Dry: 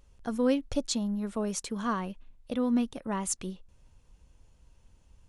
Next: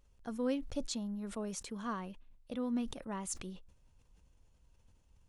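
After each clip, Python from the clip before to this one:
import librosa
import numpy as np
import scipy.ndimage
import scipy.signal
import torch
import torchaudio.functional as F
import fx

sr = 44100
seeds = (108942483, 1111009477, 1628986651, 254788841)

y = fx.sustainer(x, sr, db_per_s=83.0)
y = y * 10.0 ** (-8.5 / 20.0)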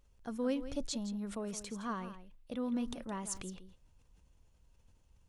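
y = x + 10.0 ** (-12.5 / 20.0) * np.pad(x, (int(166 * sr / 1000.0), 0))[:len(x)]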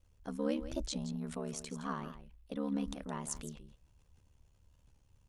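y = x * np.sin(2.0 * np.pi * 36.0 * np.arange(len(x)) / sr)
y = fx.record_warp(y, sr, rpm=45.0, depth_cents=100.0)
y = y * 10.0 ** (2.5 / 20.0)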